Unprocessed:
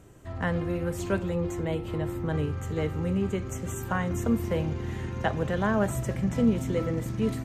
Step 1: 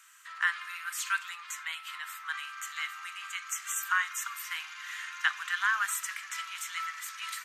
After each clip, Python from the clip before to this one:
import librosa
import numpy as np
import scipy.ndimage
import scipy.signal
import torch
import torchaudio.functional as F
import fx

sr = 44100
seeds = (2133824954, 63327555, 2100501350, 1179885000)

y = scipy.signal.sosfilt(scipy.signal.butter(8, 1200.0, 'highpass', fs=sr, output='sos'), x)
y = F.gain(torch.from_numpy(y), 7.5).numpy()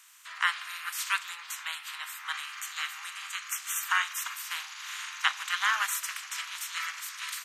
y = fx.spec_clip(x, sr, under_db=16)
y = F.gain(torch.from_numpy(y), 1.5).numpy()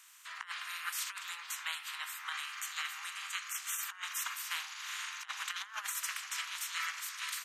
y = fx.over_compress(x, sr, threshold_db=-33.0, ratio=-0.5)
y = F.gain(torch.from_numpy(y), -4.5).numpy()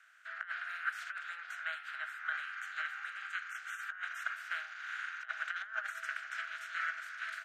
y = fx.double_bandpass(x, sr, hz=980.0, octaves=1.2)
y = F.gain(torch.from_numpy(y), 10.0).numpy()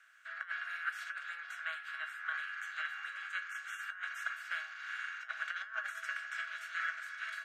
y = fx.comb_fb(x, sr, f0_hz=560.0, decay_s=0.18, harmonics='all', damping=0.0, mix_pct=80)
y = F.gain(torch.from_numpy(y), 11.0).numpy()